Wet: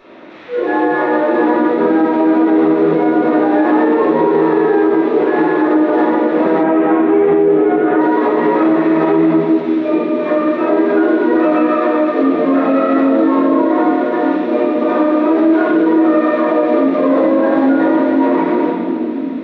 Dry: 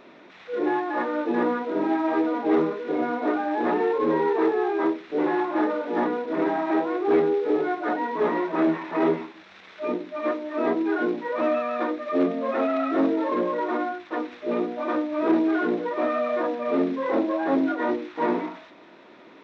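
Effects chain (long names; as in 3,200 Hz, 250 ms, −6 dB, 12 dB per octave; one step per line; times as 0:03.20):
mains-hum notches 60/120/180/240/300/360 Hz
convolution reverb, pre-delay 3 ms, DRR −8.5 dB
brickwall limiter −6 dBFS, peak gain reduction 8.5 dB
0:06.63–0:08.01: Butterworth low-pass 3,300 Hz 36 dB per octave
level +1.5 dB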